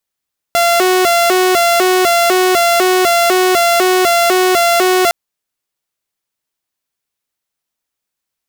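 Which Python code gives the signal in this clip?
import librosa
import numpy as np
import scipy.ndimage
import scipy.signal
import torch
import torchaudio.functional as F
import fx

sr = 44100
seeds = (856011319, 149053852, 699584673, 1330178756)

y = fx.siren(sr, length_s=4.56, kind='hi-lo', low_hz=369.0, high_hz=687.0, per_s=2.0, wave='saw', level_db=-6.5)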